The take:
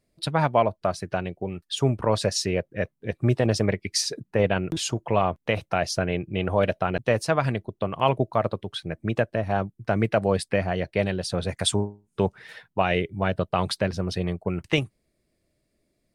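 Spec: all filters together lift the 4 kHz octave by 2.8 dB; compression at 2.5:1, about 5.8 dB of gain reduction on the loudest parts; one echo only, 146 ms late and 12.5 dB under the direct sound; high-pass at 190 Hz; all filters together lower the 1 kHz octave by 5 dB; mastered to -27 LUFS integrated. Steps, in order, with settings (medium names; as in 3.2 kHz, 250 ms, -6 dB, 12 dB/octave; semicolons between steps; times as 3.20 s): high-pass 190 Hz; peaking EQ 1 kHz -7.5 dB; peaking EQ 4 kHz +4 dB; compression 2.5:1, threshold -26 dBFS; delay 146 ms -12.5 dB; trim +4 dB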